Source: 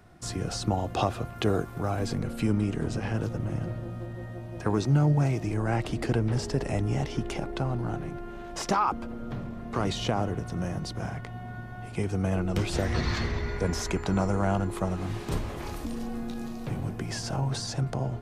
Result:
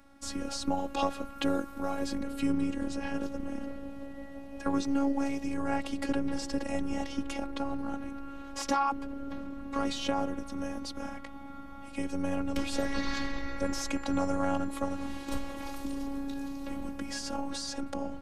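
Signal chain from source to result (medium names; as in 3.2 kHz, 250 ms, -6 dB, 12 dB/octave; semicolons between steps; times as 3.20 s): robot voice 277 Hz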